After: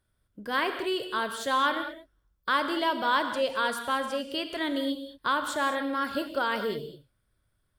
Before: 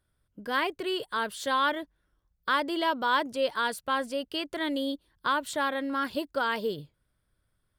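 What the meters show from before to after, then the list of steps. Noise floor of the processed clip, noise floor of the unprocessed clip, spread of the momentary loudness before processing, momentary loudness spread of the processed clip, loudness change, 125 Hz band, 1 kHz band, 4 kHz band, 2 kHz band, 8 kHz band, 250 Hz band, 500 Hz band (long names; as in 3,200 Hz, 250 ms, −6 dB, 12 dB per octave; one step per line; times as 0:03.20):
−75 dBFS, −77 dBFS, 8 LU, 7 LU, +0.5 dB, can't be measured, +1.0 dB, +1.0 dB, +0.5 dB, +1.0 dB, +0.5 dB, +0.5 dB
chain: reverb whose tail is shaped and stops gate 240 ms flat, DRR 7 dB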